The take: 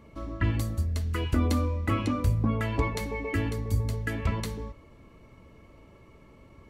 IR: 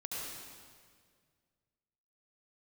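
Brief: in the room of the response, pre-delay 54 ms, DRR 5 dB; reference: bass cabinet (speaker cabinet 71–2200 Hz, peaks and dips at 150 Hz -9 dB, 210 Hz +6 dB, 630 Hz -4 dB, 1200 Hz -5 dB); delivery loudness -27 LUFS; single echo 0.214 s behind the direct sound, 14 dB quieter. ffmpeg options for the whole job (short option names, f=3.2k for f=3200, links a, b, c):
-filter_complex "[0:a]aecho=1:1:214:0.2,asplit=2[a][b];[1:a]atrim=start_sample=2205,adelay=54[c];[b][c]afir=irnorm=-1:irlink=0,volume=-6.5dB[d];[a][d]amix=inputs=2:normalize=0,highpass=f=71:w=0.5412,highpass=f=71:w=1.3066,equalizer=f=150:t=q:w=4:g=-9,equalizer=f=210:t=q:w=4:g=6,equalizer=f=630:t=q:w=4:g=-4,equalizer=f=1.2k:t=q:w=4:g=-5,lowpass=f=2.2k:w=0.5412,lowpass=f=2.2k:w=1.3066,volume=1.5dB"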